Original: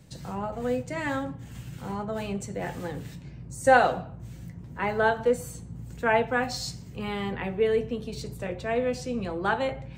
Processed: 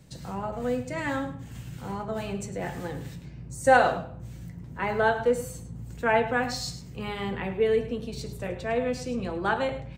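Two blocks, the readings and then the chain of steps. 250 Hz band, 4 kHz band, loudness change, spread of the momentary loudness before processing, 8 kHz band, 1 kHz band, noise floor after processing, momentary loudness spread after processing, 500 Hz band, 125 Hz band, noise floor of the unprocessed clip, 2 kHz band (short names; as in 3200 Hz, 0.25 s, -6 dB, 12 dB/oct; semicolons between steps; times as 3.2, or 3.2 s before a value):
0.0 dB, 0.0 dB, 0.0 dB, 17 LU, 0.0 dB, 0.0 dB, -43 dBFS, 17 LU, 0.0 dB, +0.5 dB, -44 dBFS, 0.0 dB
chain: de-hum 102 Hz, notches 36; on a send: echo 0.104 s -13 dB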